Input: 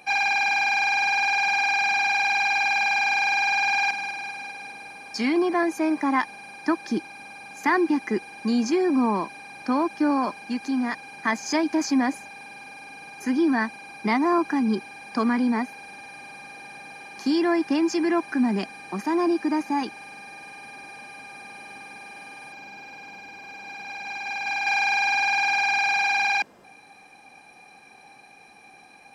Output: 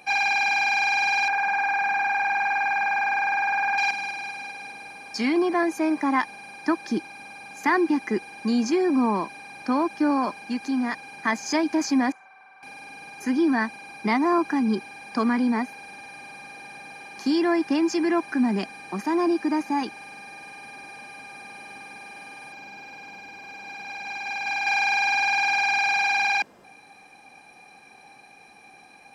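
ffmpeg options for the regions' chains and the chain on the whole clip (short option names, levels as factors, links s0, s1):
-filter_complex "[0:a]asettb=1/sr,asplit=3[s0][s1][s2];[s0]atrim=end=1.284[s3];[s1]atrim=start=1.28:end=3.78,asetpts=PTS-STARTPTS,afade=t=in:d=0.004:c=qsin,afade=t=out:st=2.496:d=0.004:c=qsin,highshelf=f=2400:t=q:w=1.5:g=-12,aeval=exprs='val(0)*gte(abs(val(0)),0.00376)':c=same[s4];[s2]atrim=start=3.776[s5];[s3][s4]acrossfade=d=0.004:c1=hsin:c2=qsin[s6];[s6][s5]acrossfade=d=0.004:c1=qsin:c2=hsin,asettb=1/sr,asplit=3[s7][s8][s9];[s7]atrim=end=12.124[s10];[s8]atrim=start=12.12:end=12.63,asetpts=PTS-STARTPTS,afade=t=in:d=0.004:c=qsin,afade=t=out:st=0.506:d=0.004:c=qsin,bandpass=f=1200:t=q:w=2.6,afreqshift=-36[s11];[s9]atrim=start=12.626[s12];[s10][s11]acrossfade=d=0.004:c1=hsin:c2=qsin[s13];[s13][s12]acrossfade=d=0.004:c1=qsin:c2=hsin"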